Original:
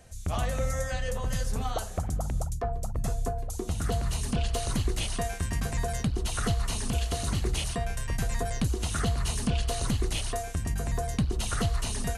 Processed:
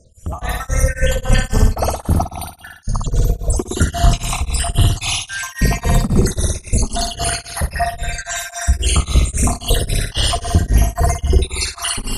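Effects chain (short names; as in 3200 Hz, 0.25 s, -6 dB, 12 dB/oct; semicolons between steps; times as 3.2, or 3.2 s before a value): random spectral dropouts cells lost 80%; soft clip -24.5 dBFS, distortion -16 dB; AGC gain up to 16 dB; flutter echo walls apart 9.9 m, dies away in 1 s; beating tremolo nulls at 3.7 Hz; gain +5.5 dB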